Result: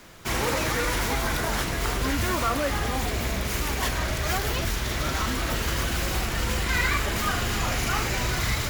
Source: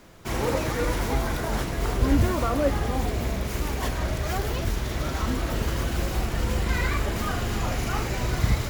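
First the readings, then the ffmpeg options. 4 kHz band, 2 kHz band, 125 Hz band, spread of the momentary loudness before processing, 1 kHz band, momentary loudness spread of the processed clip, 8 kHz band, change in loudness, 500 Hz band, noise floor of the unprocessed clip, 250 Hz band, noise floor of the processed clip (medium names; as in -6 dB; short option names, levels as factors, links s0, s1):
+6.0 dB, +5.5 dB, -2.5 dB, 5 LU, +2.0 dB, 3 LU, +6.0 dB, +1.0 dB, -2.0 dB, -31 dBFS, -2.5 dB, -29 dBFS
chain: -filter_complex "[0:a]acrossover=split=1100[s0][s1];[s0]alimiter=limit=0.0944:level=0:latency=1[s2];[s1]acontrast=55[s3];[s2][s3]amix=inputs=2:normalize=0"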